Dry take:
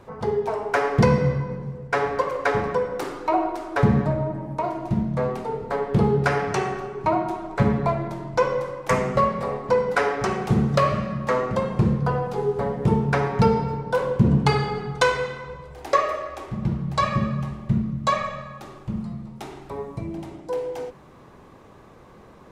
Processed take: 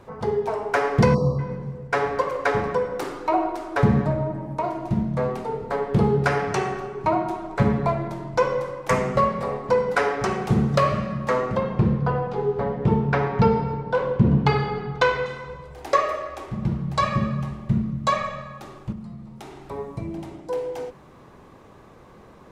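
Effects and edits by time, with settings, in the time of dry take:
1.14–1.39 spectral delete 1300–3800 Hz
11.56–15.26 LPF 3900 Hz
18.92–19.69 compressor 2:1, threshold -38 dBFS

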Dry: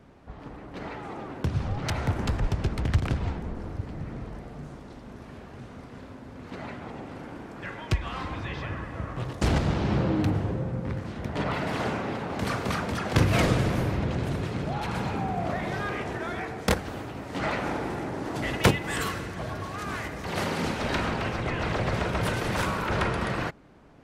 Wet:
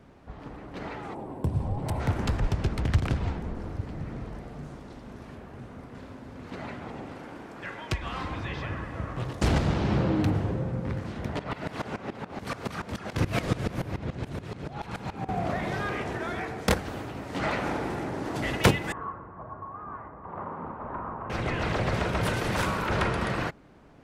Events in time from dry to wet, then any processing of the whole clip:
1.14–2 spectral gain 1100–7500 Hz -12 dB
5.35–5.95 bell 4900 Hz -5.5 dB 2 oct
7.13–8.02 low shelf 220 Hz -6.5 dB
11.39–15.29 dB-ramp tremolo swelling 7 Hz, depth 18 dB
18.92–21.3 ladder low-pass 1200 Hz, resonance 65%

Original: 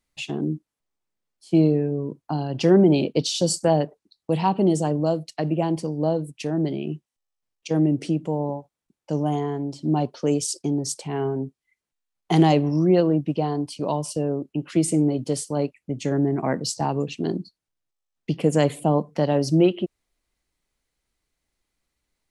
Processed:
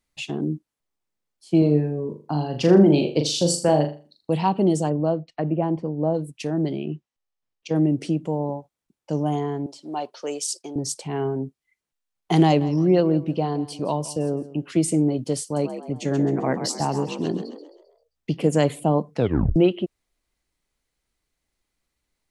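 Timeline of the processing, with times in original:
1.58–4.3 flutter echo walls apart 6.9 m, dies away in 0.35 s
4.89–6.13 LPF 2500 Hz -> 1300 Hz
6.82–7.76 air absorption 80 m
9.66–10.76 HPF 570 Hz
12.44–14.72 feedback echo 0.167 s, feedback 25%, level -17 dB
15.43–18.48 frequency-shifting echo 0.132 s, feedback 42%, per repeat +57 Hz, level -9.5 dB
19.15 tape stop 0.41 s

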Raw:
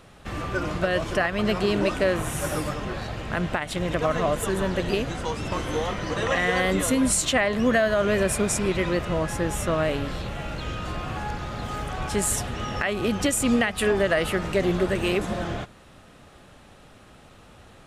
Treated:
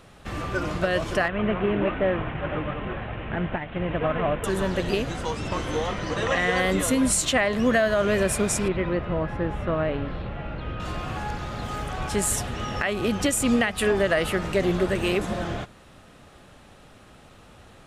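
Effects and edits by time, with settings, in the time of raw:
1.28–4.44 CVSD 16 kbps
5.35–6.58 LPF 9600 Hz
8.68–10.8 air absorption 400 m

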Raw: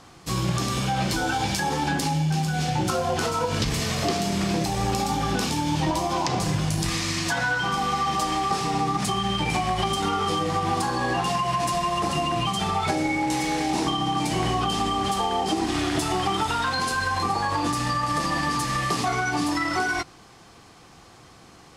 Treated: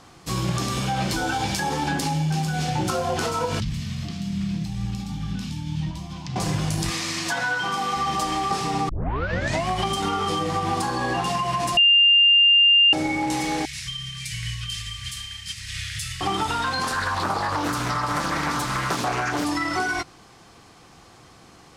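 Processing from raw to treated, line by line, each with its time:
3.6–6.36 EQ curve 200 Hz 0 dB, 420 Hz -25 dB, 3200 Hz -8 dB, 9000 Hz -15 dB
6.91–7.97 HPF 250 Hz 6 dB/oct
8.89 tape start 0.78 s
11.77–12.93 bleep 2800 Hz -12 dBFS
13.65–16.21 elliptic band-stop 120–1900 Hz, stop band 50 dB
16.83–19.45 Doppler distortion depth 0.57 ms

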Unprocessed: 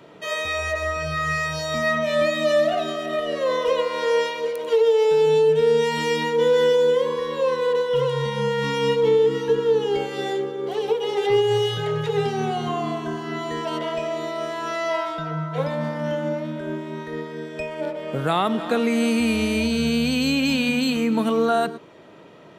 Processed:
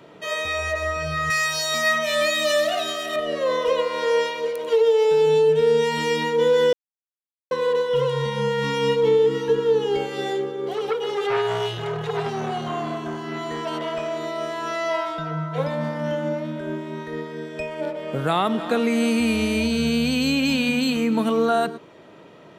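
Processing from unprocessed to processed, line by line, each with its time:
1.3–3.16 tilt +3.5 dB/oct
6.73–7.51 mute
10.73–14.25 core saturation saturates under 1100 Hz

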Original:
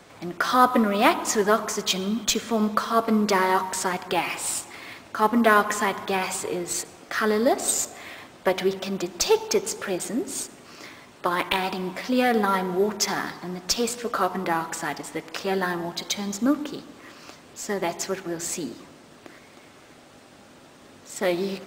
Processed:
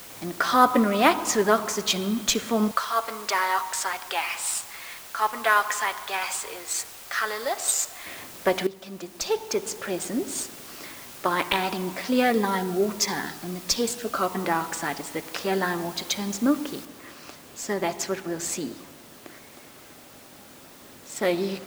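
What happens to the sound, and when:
2.71–8.06 HPF 840 Hz
8.67–10.27 fade in, from -14.5 dB
12.3–14.35 cascading phaser falling 1.5 Hz
16.85 noise floor step -44 dB -52 dB

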